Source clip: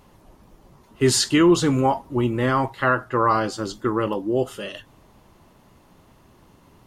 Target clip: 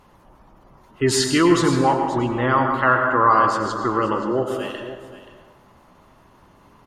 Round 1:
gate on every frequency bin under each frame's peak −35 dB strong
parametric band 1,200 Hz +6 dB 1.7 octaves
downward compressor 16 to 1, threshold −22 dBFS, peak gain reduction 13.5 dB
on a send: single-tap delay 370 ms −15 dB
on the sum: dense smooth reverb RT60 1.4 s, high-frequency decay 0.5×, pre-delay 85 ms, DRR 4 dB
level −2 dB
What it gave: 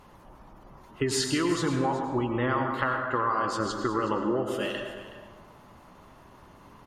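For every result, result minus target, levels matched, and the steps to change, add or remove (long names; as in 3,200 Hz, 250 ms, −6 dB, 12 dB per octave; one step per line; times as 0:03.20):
downward compressor: peak gain reduction +13.5 dB; echo 157 ms early
remove: downward compressor 16 to 1, threshold −22 dBFS, peak gain reduction 13.5 dB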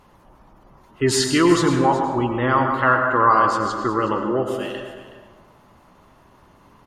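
echo 157 ms early
change: single-tap delay 527 ms −15 dB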